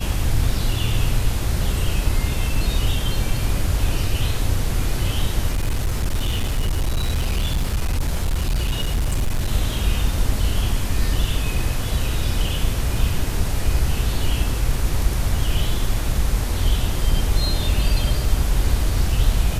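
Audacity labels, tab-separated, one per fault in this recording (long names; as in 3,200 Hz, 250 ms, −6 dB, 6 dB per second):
5.530000	9.470000	clipping −16.5 dBFS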